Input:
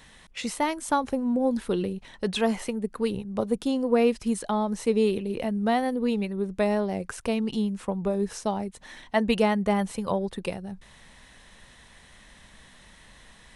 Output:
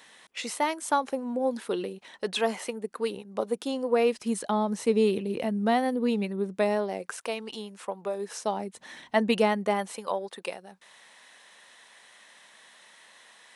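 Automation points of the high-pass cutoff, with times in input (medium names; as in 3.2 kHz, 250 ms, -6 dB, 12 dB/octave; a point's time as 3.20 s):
4.06 s 360 Hz
4.49 s 150 Hz
6.28 s 150 Hz
7.26 s 520 Hz
8.17 s 520 Hz
9.05 s 130 Hz
10.09 s 520 Hz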